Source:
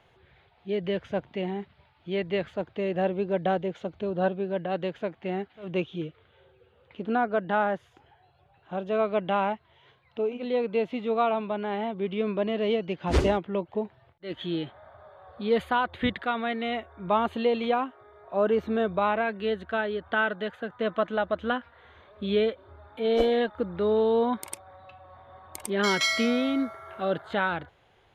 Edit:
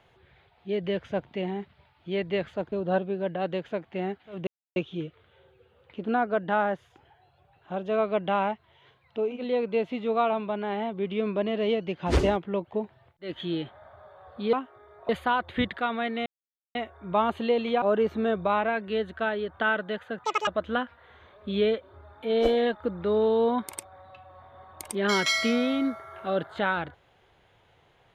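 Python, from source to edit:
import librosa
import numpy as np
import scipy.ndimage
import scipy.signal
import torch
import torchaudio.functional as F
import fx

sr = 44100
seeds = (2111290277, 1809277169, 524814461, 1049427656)

y = fx.edit(x, sr, fx.cut(start_s=2.72, length_s=1.3),
    fx.insert_silence(at_s=5.77, length_s=0.29),
    fx.insert_silence(at_s=16.71, length_s=0.49),
    fx.move(start_s=17.78, length_s=0.56, to_s=15.54),
    fx.speed_span(start_s=20.76, length_s=0.46, speed=1.97), tone=tone)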